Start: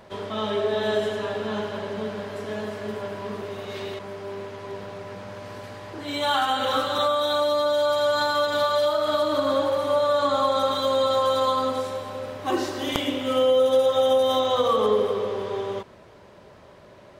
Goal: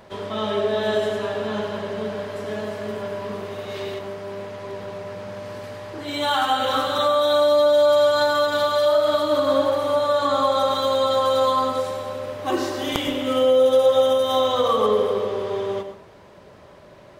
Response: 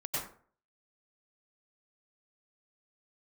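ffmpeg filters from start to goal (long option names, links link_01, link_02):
-filter_complex "[0:a]asplit=2[link_01][link_02];[1:a]atrim=start_sample=2205,highshelf=frequency=10000:gain=8.5[link_03];[link_02][link_03]afir=irnorm=-1:irlink=0,volume=-11.5dB[link_04];[link_01][link_04]amix=inputs=2:normalize=0"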